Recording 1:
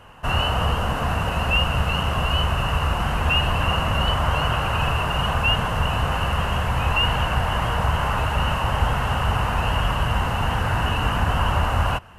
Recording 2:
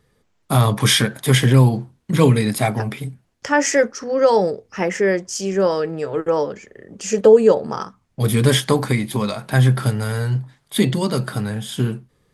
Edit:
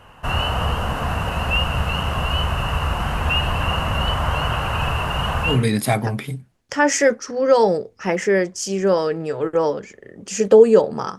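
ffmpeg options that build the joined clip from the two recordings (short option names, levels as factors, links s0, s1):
-filter_complex "[0:a]apad=whole_dur=11.18,atrim=end=11.18,atrim=end=5.67,asetpts=PTS-STARTPTS[s0];[1:a]atrim=start=2.16:end=7.91,asetpts=PTS-STARTPTS[s1];[s0][s1]acrossfade=d=0.24:c1=tri:c2=tri"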